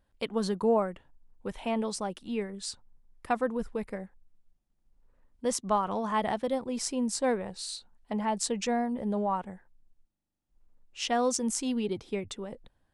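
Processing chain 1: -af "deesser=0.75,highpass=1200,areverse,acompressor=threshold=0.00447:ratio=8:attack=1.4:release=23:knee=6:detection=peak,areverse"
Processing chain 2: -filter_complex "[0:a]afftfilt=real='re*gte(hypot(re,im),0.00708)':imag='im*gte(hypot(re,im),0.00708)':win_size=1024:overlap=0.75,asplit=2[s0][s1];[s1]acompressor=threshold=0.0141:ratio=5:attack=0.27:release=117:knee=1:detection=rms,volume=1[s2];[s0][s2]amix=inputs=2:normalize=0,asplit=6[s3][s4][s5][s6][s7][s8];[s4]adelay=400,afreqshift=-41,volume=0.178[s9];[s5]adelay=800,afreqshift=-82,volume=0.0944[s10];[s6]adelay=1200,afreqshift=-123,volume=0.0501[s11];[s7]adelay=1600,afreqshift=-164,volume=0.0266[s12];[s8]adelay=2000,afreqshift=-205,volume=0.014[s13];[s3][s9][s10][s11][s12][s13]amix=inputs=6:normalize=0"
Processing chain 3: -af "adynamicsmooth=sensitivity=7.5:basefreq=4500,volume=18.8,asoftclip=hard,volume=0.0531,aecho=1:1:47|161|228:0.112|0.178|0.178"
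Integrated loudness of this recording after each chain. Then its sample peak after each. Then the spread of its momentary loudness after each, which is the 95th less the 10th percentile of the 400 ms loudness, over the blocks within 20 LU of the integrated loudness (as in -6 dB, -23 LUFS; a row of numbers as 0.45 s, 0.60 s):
-51.0 LUFS, -29.5 LUFS, -33.0 LUFS; -33.5 dBFS, -10.5 dBFS, -22.5 dBFS; 9 LU, 16 LU, 12 LU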